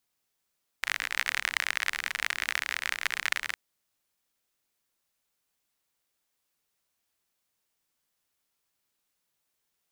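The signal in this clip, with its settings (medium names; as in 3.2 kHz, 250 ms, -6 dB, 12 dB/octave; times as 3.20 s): rain from filtered ticks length 2.71 s, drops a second 46, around 1.9 kHz, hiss -26.5 dB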